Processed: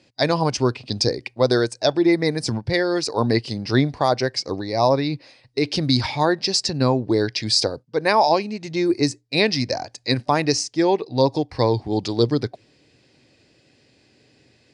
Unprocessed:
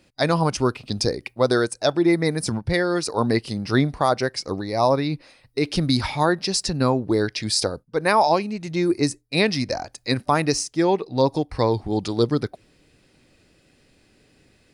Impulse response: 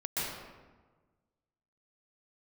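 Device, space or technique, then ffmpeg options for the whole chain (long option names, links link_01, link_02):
car door speaker: -af "highpass=100,equalizer=frequency=120:width_type=q:width=4:gain=4,equalizer=frequency=180:width_type=q:width=4:gain=-6,equalizer=frequency=1300:width_type=q:width=4:gain=-7,equalizer=frequency=4700:width_type=q:width=4:gain=4,lowpass=frequency=7600:width=0.5412,lowpass=frequency=7600:width=1.3066,volume=1.5dB"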